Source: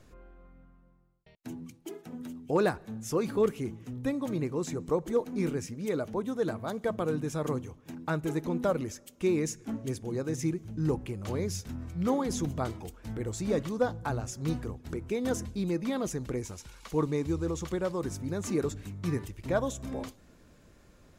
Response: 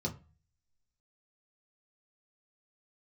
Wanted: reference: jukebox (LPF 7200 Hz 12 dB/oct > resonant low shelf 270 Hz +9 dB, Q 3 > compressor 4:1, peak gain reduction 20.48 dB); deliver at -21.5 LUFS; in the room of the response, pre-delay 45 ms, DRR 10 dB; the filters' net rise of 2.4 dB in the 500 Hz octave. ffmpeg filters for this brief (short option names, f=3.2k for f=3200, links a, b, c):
-filter_complex "[0:a]equalizer=f=500:t=o:g=7.5,asplit=2[a][b];[1:a]atrim=start_sample=2205,adelay=45[c];[b][c]afir=irnorm=-1:irlink=0,volume=-12.5dB[d];[a][d]amix=inputs=2:normalize=0,lowpass=7.2k,lowshelf=f=270:t=q:w=3:g=9,acompressor=threshold=-31dB:ratio=4,volume=11.5dB"